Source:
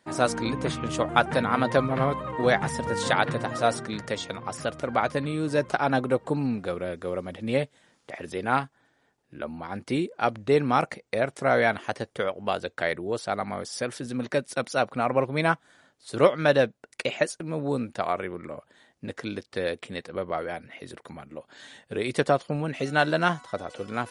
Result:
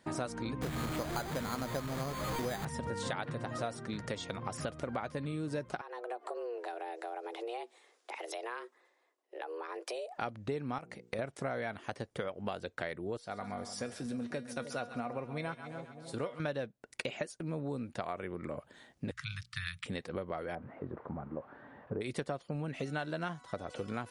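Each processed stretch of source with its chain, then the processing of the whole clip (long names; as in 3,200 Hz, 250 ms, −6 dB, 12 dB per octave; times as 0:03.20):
0:00.62–0:02.65: linear delta modulator 16 kbit/s, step −21 dBFS + bad sample-rate conversion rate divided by 8×, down filtered, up hold
0:05.81–0:10.18: downward compressor 5 to 1, threshold −37 dBFS + frequency shifter +240 Hz + multiband upward and downward expander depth 40%
0:10.78–0:11.19: mains-hum notches 60/120/180/240/300/360/420/480 Hz + downward compressor 3 to 1, threshold −31 dBFS
0:13.17–0:16.40: tuned comb filter 240 Hz, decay 0.23 s, mix 70% + echo with a time of its own for lows and highs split 750 Hz, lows 304 ms, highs 133 ms, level −13 dB
0:19.11–0:19.86: Chebyshev band-stop filter 150–1,200 Hz, order 4 + mains-hum notches 60/120/180/240/300/360/420/480 Hz
0:20.55–0:22.01: spike at every zero crossing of −27.5 dBFS + low-pass filter 1,200 Hz 24 dB per octave
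whole clip: low-shelf EQ 220 Hz +6 dB; downward compressor 6 to 1, threshold −35 dBFS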